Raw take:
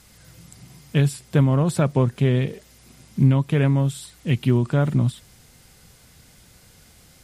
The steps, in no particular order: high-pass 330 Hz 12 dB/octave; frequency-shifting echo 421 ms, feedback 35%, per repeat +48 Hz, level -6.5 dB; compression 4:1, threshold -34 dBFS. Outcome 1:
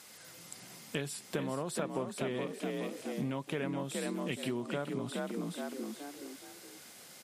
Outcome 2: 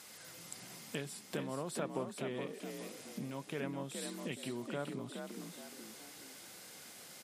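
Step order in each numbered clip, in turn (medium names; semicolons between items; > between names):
frequency-shifting echo > high-pass > compression; compression > frequency-shifting echo > high-pass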